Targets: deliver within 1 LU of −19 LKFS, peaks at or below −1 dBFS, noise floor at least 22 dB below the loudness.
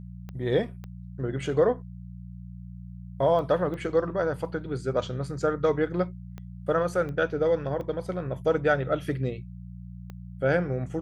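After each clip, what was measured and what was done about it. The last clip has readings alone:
number of clicks 8; mains hum 60 Hz; hum harmonics up to 180 Hz; level of the hum −39 dBFS; integrated loudness −27.5 LKFS; sample peak −11.0 dBFS; target loudness −19.0 LKFS
→ click removal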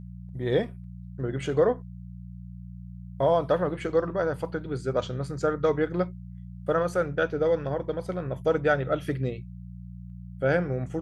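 number of clicks 0; mains hum 60 Hz; hum harmonics up to 180 Hz; level of the hum −39 dBFS
→ hum removal 60 Hz, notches 3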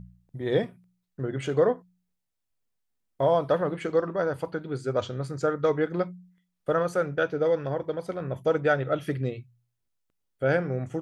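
mains hum none found; integrated loudness −27.5 LKFS; sample peak −11.5 dBFS; target loudness −19.0 LKFS
→ level +8.5 dB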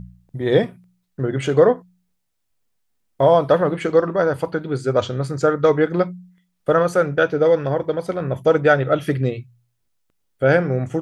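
integrated loudness −19.0 LKFS; sample peak −3.0 dBFS; background noise floor −71 dBFS

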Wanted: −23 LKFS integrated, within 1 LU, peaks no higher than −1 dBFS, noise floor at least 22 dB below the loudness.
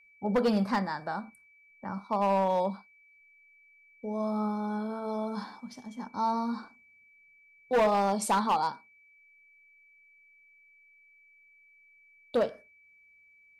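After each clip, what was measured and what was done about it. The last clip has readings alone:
share of clipped samples 0.8%; peaks flattened at −20.5 dBFS; interfering tone 2,300 Hz; level of the tone −58 dBFS; integrated loudness −30.0 LKFS; sample peak −20.5 dBFS; target loudness −23.0 LKFS
→ clipped peaks rebuilt −20.5 dBFS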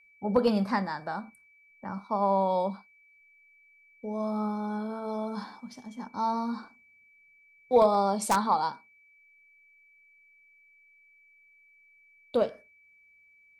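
share of clipped samples 0.0%; interfering tone 2,300 Hz; level of the tone −58 dBFS
→ notch filter 2,300 Hz, Q 30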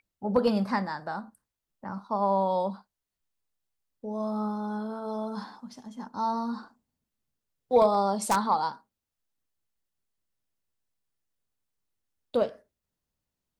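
interfering tone none found; integrated loudness −28.5 LKFS; sample peak −11.5 dBFS; target loudness −23.0 LKFS
→ level +5.5 dB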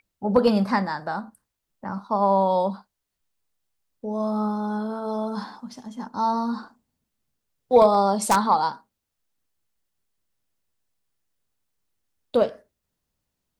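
integrated loudness −23.0 LKFS; sample peak −6.0 dBFS; background noise floor −82 dBFS

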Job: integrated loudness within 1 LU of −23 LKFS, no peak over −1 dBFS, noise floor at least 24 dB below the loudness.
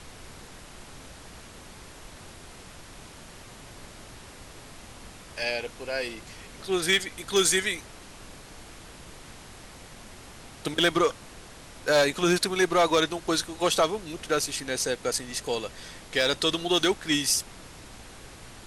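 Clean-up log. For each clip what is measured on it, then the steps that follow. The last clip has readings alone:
share of clipped samples 0.2%; peaks flattened at −14.5 dBFS; background noise floor −47 dBFS; target noise floor −50 dBFS; integrated loudness −26.0 LKFS; sample peak −14.5 dBFS; target loudness −23.0 LKFS
→ clipped peaks rebuilt −14.5 dBFS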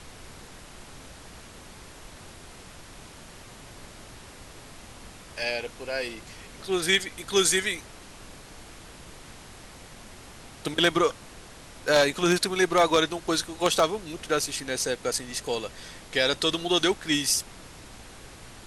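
share of clipped samples 0.0%; background noise floor −47 dBFS; target noise floor −50 dBFS
→ noise reduction from a noise print 6 dB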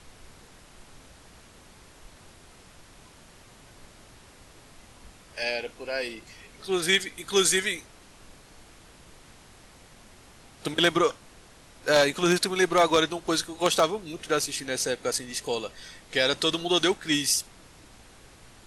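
background noise floor −53 dBFS; integrated loudness −25.5 LKFS; sample peak −5.5 dBFS; target loudness −23.0 LKFS
→ level +2.5 dB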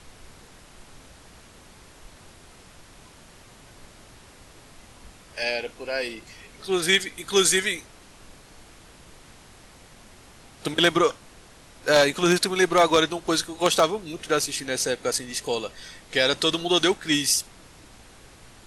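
integrated loudness −23.0 LKFS; sample peak −3.0 dBFS; background noise floor −50 dBFS

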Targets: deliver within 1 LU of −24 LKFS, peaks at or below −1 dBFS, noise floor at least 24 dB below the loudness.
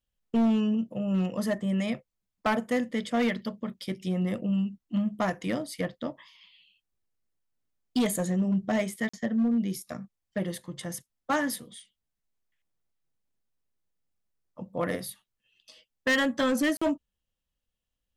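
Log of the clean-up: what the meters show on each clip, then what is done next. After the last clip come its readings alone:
share of clipped samples 1.2%; peaks flattened at −20.5 dBFS; number of dropouts 2; longest dropout 45 ms; integrated loudness −29.5 LKFS; sample peak −20.5 dBFS; target loudness −24.0 LKFS
→ clipped peaks rebuilt −20.5 dBFS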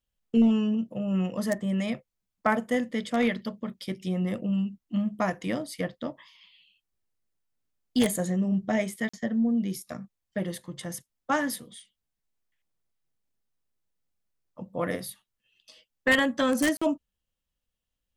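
share of clipped samples 0.0%; number of dropouts 2; longest dropout 45 ms
→ repair the gap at 0:09.09/0:16.77, 45 ms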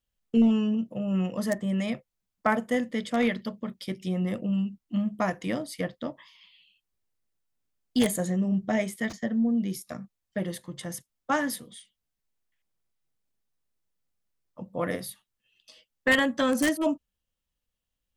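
number of dropouts 0; integrated loudness −28.5 LKFS; sample peak −11.5 dBFS; target loudness −24.0 LKFS
→ level +4.5 dB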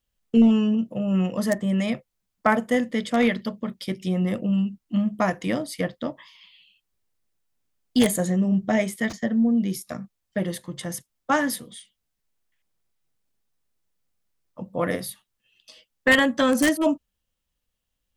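integrated loudness −24.0 LKFS; sample peak −7.0 dBFS; background noise floor −80 dBFS

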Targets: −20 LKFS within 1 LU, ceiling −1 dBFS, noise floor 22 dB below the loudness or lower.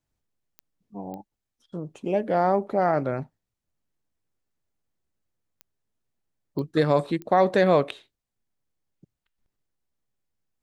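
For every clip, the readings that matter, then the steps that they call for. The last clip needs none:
number of clicks 5; integrated loudness −24.0 LKFS; sample peak −7.5 dBFS; target loudness −20.0 LKFS
→ click removal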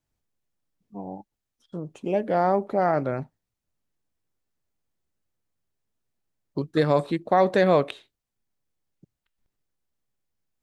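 number of clicks 0; integrated loudness −23.5 LKFS; sample peak −7.5 dBFS; target loudness −20.0 LKFS
→ level +3.5 dB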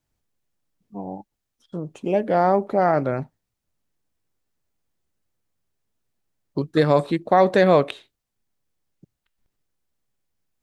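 integrated loudness −20.0 LKFS; sample peak −4.0 dBFS; background noise floor −81 dBFS

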